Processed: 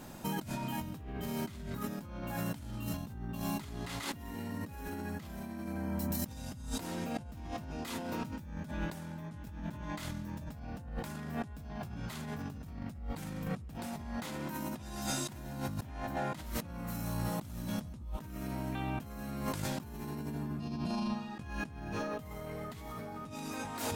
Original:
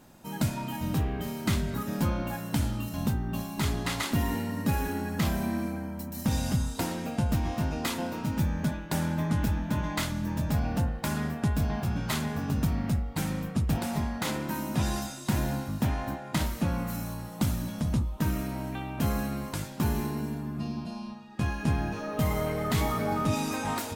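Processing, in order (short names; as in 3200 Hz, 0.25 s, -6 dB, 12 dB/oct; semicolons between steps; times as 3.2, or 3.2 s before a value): negative-ratio compressor -39 dBFS, ratio -1; gain -1.5 dB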